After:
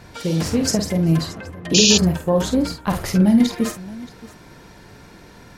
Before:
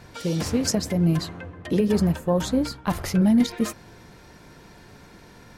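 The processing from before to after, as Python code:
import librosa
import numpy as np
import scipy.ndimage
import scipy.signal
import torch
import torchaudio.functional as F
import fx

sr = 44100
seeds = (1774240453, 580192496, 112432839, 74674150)

y = fx.echo_multitap(x, sr, ms=(49, 625), db=(-7.5, -19.5))
y = fx.spec_paint(y, sr, seeds[0], shape='noise', start_s=1.74, length_s=0.24, low_hz=2400.0, high_hz=7200.0, level_db=-18.0)
y = y * 10.0 ** (3.0 / 20.0)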